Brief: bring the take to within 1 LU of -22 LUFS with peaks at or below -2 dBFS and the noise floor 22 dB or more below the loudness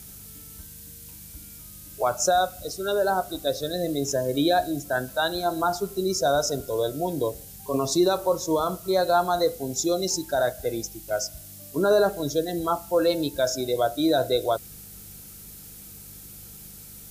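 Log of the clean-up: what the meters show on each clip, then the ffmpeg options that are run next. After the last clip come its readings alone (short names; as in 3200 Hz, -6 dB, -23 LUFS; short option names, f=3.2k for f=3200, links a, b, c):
hum 50 Hz; harmonics up to 200 Hz; hum level -49 dBFS; noise floor -44 dBFS; noise floor target -47 dBFS; loudness -25.0 LUFS; peak -10.5 dBFS; loudness target -22.0 LUFS
-> -af "bandreject=f=50:t=h:w=4,bandreject=f=100:t=h:w=4,bandreject=f=150:t=h:w=4,bandreject=f=200:t=h:w=4"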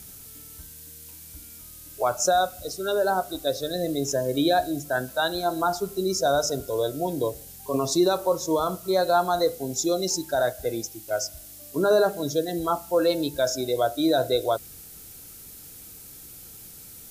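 hum none; noise floor -45 dBFS; noise floor target -47 dBFS
-> -af "afftdn=nr=6:nf=-45"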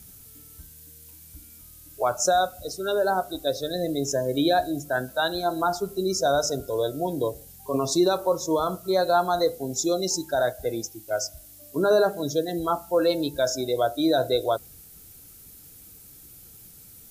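noise floor -48 dBFS; loudness -25.0 LUFS; peak -10.5 dBFS; loudness target -22.0 LUFS
-> -af "volume=3dB"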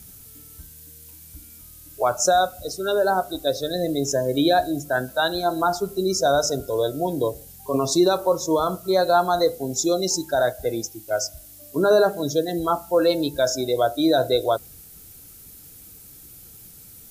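loudness -22.0 LUFS; peak -7.5 dBFS; noise floor -45 dBFS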